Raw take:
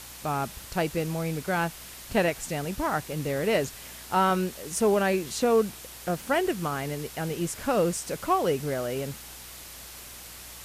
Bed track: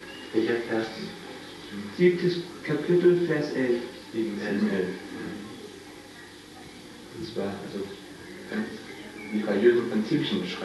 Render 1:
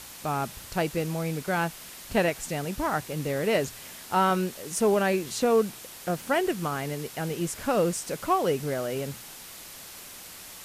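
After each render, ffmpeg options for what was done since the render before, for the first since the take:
-af "bandreject=f=60:t=h:w=4,bandreject=f=120:t=h:w=4"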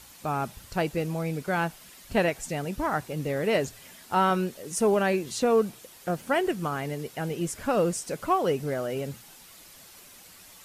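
-af "afftdn=nr=8:nf=-44"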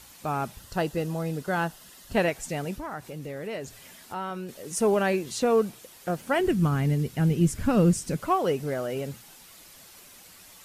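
-filter_complex "[0:a]asettb=1/sr,asplit=3[s0][s1][s2];[s0]atrim=end=0.594[s3];[s1]atrim=start=0.59:end=2.14,asetpts=PTS-STARTPTS,afade=t=in:d=0.004:c=qsin,afade=t=out:st=1.546:d=0.004:c=qsin,bandreject=f=2300:w=5.3[s4];[s2]atrim=start=2.136[s5];[s3][s4]acrossfade=d=0.004:c1=hsin:c2=qsin[s6];[s6][s5]acrossfade=d=0.004:c1=qsin:c2=hsin,asettb=1/sr,asplit=3[s7][s8][s9];[s7]atrim=end=2.774[s10];[s8]atrim=start=2.77:end=4.49,asetpts=PTS-STARTPTS,afade=t=in:d=0.004:c=qsin,afade=t=out:st=1.716:d=0.004:c=qsin,acompressor=threshold=0.0126:ratio=2:attack=3.2:release=140:knee=1:detection=peak[s11];[s9]atrim=start=4.486[s12];[s10][s11]acrossfade=d=0.004:c1=hsin:c2=qsin[s13];[s13][s12]acrossfade=d=0.004:c1=qsin:c2=hsin,asplit=3[s14][s15][s16];[s14]afade=t=out:st=6.38:d=0.02[s17];[s15]asubboost=boost=5.5:cutoff=240,afade=t=in:st=6.38:d=0.02,afade=t=out:st=8.18:d=0.02[s18];[s16]afade=t=in:st=8.18:d=0.02[s19];[s17][s18][s19]amix=inputs=3:normalize=0"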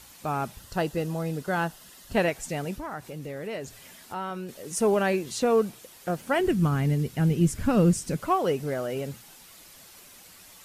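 -af anull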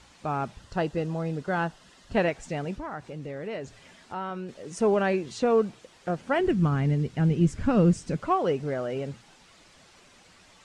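-af "lowpass=f=8700:w=0.5412,lowpass=f=8700:w=1.3066,aemphasis=mode=reproduction:type=50kf"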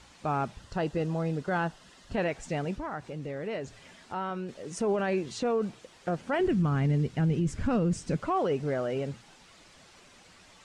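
-af "alimiter=limit=0.1:level=0:latency=1:release=23"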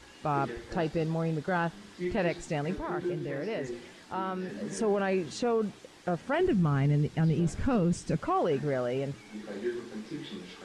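-filter_complex "[1:a]volume=0.2[s0];[0:a][s0]amix=inputs=2:normalize=0"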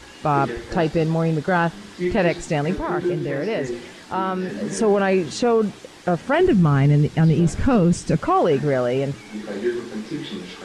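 -af "volume=3.16"

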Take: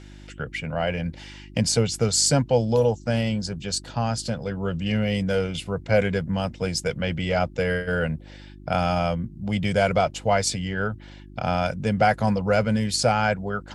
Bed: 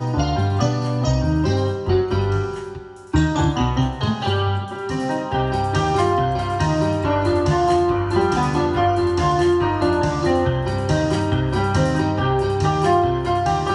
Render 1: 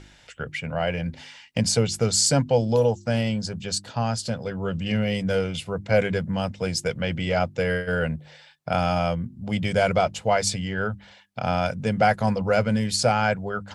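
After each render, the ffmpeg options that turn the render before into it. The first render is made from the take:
-af "bandreject=f=50:t=h:w=4,bandreject=f=100:t=h:w=4,bandreject=f=150:t=h:w=4,bandreject=f=200:t=h:w=4,bandreject=f=250:t=h:w=4,bandreject=f=300:t=h:w=4,bandreject=f=350:t=h:w=4"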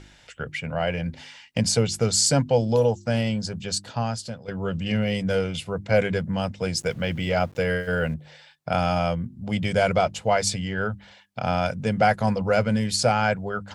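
-filter_complex "[0:a]asettb=1/sr,asplit=3[s0][s1][s2];[s0]atrim=end=6.774[s3];[s1]atrim=start=6.77:end=8.14,asetpts=PTS-STARTPTS,afade=t=in:d=0.004:c=qsin,afade=t=out:st=1.366:d=0.004:c=qsin,aeval=exprs='val(0)*gte(abs(val(0)),0.00447)':c=same[s4];[s2]atrim=start=8.136[s5];[s3][s4]acrossfade=d=0.004:c1=hsin:c2=qsin[s6];[s6][s5]acrossfade=d=0.004:c1=qsin:c2=hsin,asplit=2[s7][s8];[s7]atrim=end=4.48,asetpts=PTS-STARTPTS,afade=t=out:st=3.94:d=0.54:silence=0.237137[s9];[s8]atrim=start=4.48,asetpts=PTS-STARTPTS,afade=t=in:d=0.004:c=hsin:silence=0.237137[s10];[s9][s10]concat=n=2:v=0:a=1"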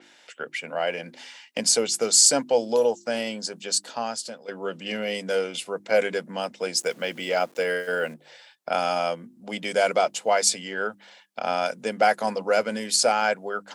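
-af "highpass=f=270:w=0.5412,highpass=f=270:w=1.3066,adynamicequalizer=threshold=0.01:dfrequency=5200:dqfactor=0.7:tfrequency=5200:tqfactor=0.7:attack=5:release=100:ratio=0.375:range=3.5:mode=boostabove:tftype=highshelf"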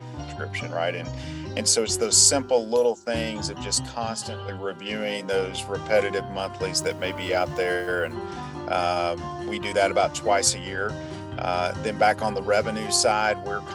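-filter_complex "[1:a]volume=0.168[s0];[0:a][s0]amix=inputs=2:normalize=0"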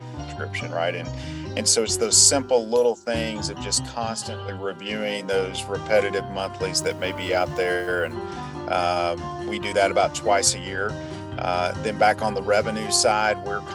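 -af "volume=1.19"

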